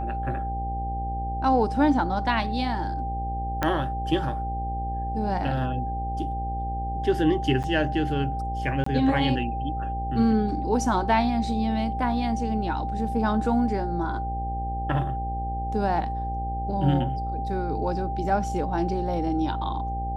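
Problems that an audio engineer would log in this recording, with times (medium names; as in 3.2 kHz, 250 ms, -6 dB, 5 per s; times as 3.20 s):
buzz 60 Hz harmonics 14 -31 dBFS
whine 790 Hz -30 dBFS
3.63 s: pop -10 dBFS
7.63–7.64 s: dropout 8.2 ms
8.84–8.86 s: dropout 24 ms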